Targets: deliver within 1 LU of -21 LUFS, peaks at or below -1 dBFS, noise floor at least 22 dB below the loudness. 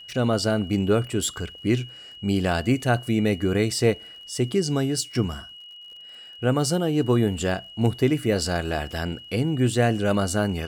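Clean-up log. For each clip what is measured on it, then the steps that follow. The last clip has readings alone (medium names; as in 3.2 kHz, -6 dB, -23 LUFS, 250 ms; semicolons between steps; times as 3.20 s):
tick rate 42 per s; steady tone 2.9 kHz; tone level -41 dBFS; loudness -24.0 LUFS; peak level -7.0 dBFS; loudness target -21.0 LUFS
-> de-click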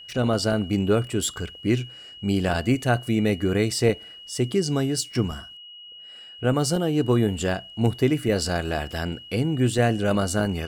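tick rate 0.75 per s; steady tone 2.9 kHz; tone level -41 dBFS
-> band-stop 2.9 kHz, Q 30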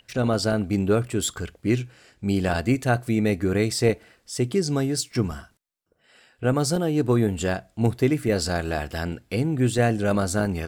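steady tone not found; loudness -24.0 LUFS; peak level -7.0 dBFS; loudness target -21.0 LUFS
-> trim +3 dB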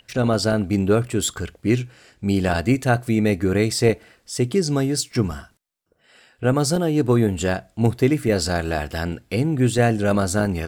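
loudness -21.0 LUFS; peak level -4.0 dBFS; noise floor -63 dBFS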